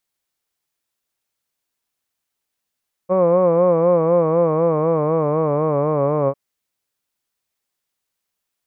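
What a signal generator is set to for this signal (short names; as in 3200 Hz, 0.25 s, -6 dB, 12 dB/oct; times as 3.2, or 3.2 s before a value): formant vowel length 3.25 s, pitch 180 Hz, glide -4 st, vibrato 4 Hz, vibrato depth 0.9 st, F1 530 Hz, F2 1100 Hz, F3 2300 Hz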